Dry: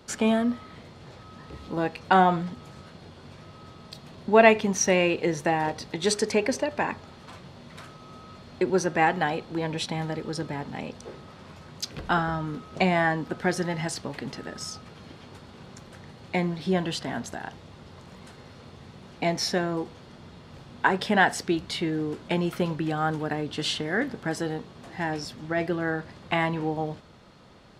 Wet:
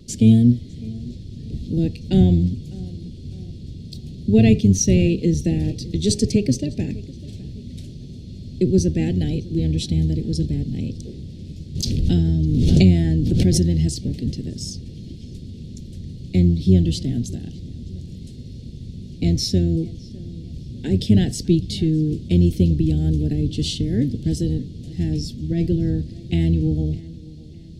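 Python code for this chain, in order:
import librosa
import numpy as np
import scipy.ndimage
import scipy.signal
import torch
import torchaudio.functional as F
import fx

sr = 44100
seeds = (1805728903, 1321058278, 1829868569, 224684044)

y = fx.octave_divider(x, sr, octaves=1, level_db=-4.0)
y = scipy.signal.sosfilt(scipy.signal.cheby1(2, 1.0, [300.0, 4100.0], 'bandstop', fs=sr, output='sos'), y)
y = fx.low_shelf(y, sr, hz=240.0, db=11.5)
y = fx.echo_filtered(y, sr, ms=605, feedback_pct=44, hz=3100.0, wet_db=-20.0)
y = fx.vibrato(y, sr, rate_hz=0.5, depth_cents=7.0)
y = fx.pre_swell(y, sr, db_per_s=25.0, at=(11.75, 13.97))
y = y * 10.0 ** (4.0 / 20.0)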